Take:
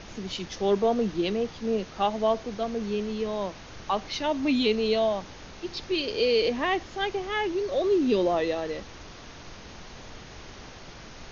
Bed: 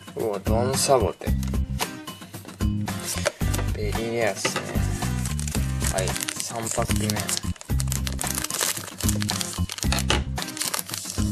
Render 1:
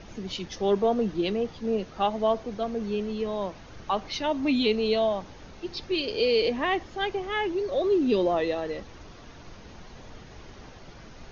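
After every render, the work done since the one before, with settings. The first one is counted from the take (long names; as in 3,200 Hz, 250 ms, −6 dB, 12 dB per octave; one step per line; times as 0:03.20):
broadband denoise 7 dB, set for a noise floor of −45 dBFS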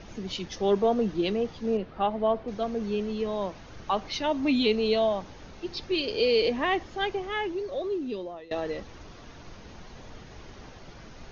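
0:01.77–0:02.48: high-frequency loss of the air 270 metres
0:07.03–0:08.51: fade out, to −23.5 dB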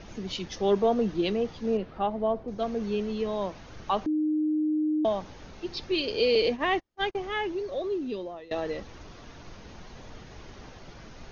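0:01.97–0:02.58: parametric band 2,700 Hz −4 dB → −11 dB 2.8 octaves
0:04.06–0:05.05: beep over 307 Hz −23 dBFS
0:06.35–0:07.19: noise gate −31 dBFS, range −39 dB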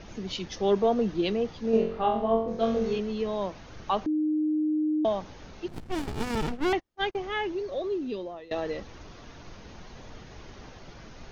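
0:01.71–0:02.99: flutter between parallel walls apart 3.8 metres, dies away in 0.52 s
0:05.68–0:06.73: windowed peak hold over 65 samples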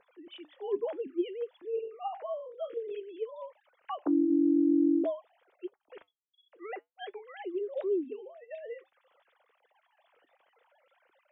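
three sine waves on the formant tracks
flanger 0.54 Hz, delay 3.1 ms, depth 3.5 ms, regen −80%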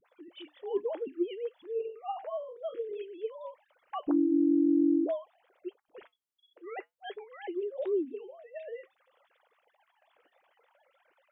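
all-pass dispersion highs, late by 50 ms, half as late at 480 Hz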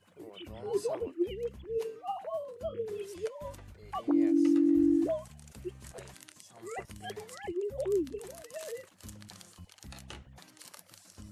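mix in bed −24.5 dB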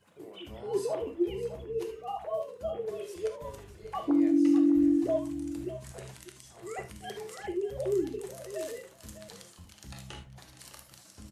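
single-tap delay 606 ms −13.5 dB
reverb whose tail is shaped and stops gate 100 ms flat, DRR 5 dB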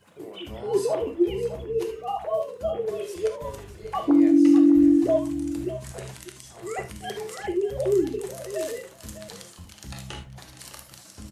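level +7 dB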